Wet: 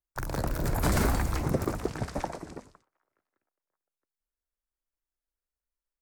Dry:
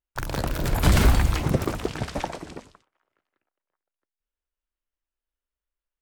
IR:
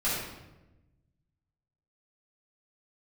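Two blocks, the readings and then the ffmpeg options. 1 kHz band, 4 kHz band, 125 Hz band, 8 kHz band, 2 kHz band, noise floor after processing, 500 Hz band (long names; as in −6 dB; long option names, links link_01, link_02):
−3.5 dB, −9.5 dB, −7.0 dB, −4.0 dB, −6.0 dB, below −85 dBFS, −3.0 dB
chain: -filter_complex "[0:a]equalizer=frequency=3100:width=1.5:gain=-10,acrossover=split=210|1400[link_01][link_02][link_03];[link_01]alimiter=limit=-19.5dB:level=0:latency=1[link_04];[link_04][link_02][link_03]amix=inputs=3:normalize=0,volume=-3dB"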